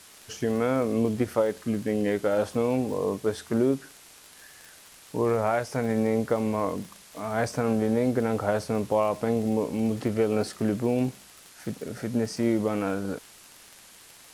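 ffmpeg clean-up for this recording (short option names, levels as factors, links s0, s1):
-af "adeclick=t=4,afwtdn=0.0035"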